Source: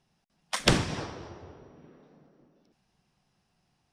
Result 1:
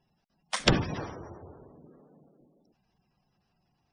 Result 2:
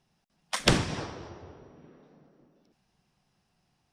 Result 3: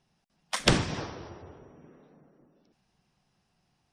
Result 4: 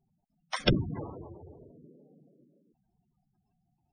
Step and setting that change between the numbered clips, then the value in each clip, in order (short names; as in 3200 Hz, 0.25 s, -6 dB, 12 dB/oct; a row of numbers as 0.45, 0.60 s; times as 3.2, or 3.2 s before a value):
spectral gate, under each frame's peak: -20, -55, -35, -10 dB